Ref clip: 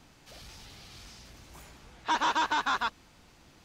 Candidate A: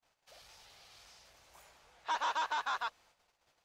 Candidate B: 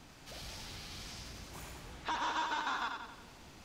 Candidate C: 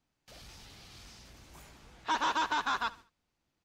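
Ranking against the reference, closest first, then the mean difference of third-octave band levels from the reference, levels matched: C, A, B; 3.5, 5.5, 8.5 dB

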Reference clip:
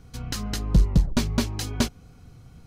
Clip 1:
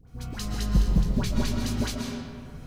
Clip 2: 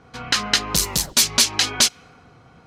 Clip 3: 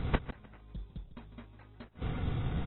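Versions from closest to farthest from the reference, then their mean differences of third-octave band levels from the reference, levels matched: 2, 1, 3; 7.0, 10.0, 16.0 dB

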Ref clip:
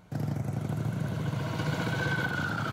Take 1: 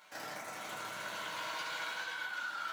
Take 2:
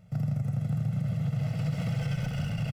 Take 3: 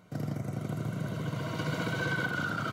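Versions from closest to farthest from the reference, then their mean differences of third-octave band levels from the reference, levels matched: 3, 2, 1; 1.5, 8.0, 12.5 dB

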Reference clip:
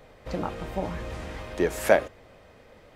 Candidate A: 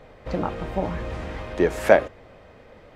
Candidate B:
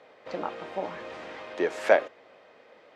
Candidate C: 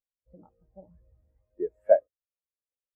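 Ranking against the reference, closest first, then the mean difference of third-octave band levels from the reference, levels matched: A, B, C; 2.0, 5.0, 20.5 dB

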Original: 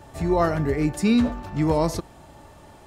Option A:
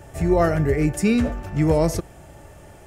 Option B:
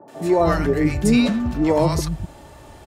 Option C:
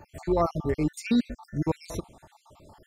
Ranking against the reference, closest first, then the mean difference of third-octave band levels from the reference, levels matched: A, B, C; 2.0, 5.0, 7.5 dB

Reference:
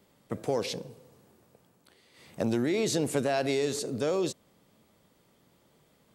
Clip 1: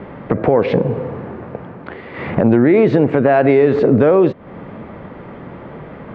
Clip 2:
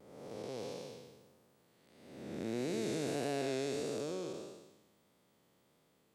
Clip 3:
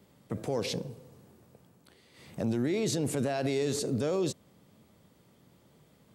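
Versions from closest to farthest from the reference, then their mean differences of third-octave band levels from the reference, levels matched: 3, 2, 1; 2.5, 6.5, 10.5 dB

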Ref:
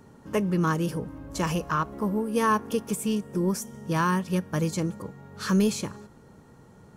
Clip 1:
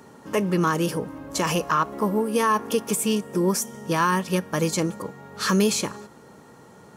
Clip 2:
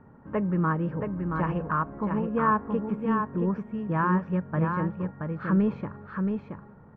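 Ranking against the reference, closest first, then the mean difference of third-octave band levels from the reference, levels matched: 1, 2; 3.5, 8.0 dB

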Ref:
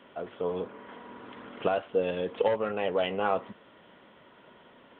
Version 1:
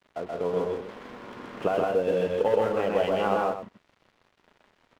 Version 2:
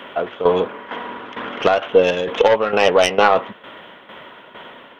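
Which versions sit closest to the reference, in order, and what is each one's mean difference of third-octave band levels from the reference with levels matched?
2, 1; 3.5, 6.5 dB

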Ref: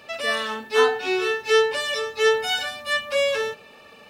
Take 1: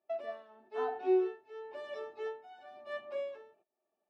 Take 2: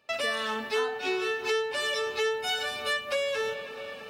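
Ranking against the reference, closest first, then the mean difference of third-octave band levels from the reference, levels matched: 2, 1; 5.0, 12.0 dB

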